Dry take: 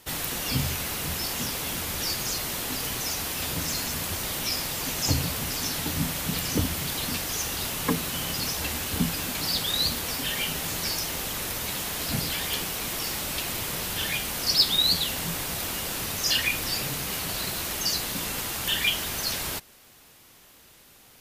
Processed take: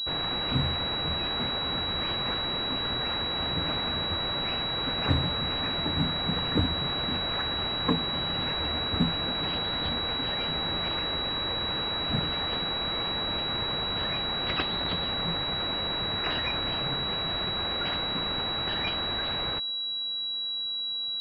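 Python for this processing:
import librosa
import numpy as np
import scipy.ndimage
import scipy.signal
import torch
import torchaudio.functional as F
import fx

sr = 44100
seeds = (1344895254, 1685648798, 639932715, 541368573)

y = fx.pwm(x, sr, carrier_hz=3900.0)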